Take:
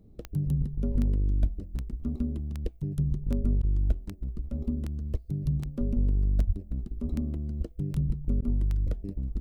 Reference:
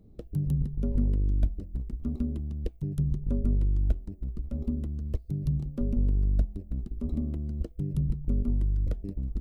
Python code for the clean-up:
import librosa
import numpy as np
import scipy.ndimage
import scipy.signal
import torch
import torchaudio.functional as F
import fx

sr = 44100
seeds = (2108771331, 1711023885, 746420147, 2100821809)

y = fx.fix_declick_ar(x, sr, threshold=10.0)
y = fx.fix_deplosive(y, sr, at_s=(6.46,))
y = fx.fix_interpolate(y, sr, at_s=(3.62, 8.41), length_ms=11.0)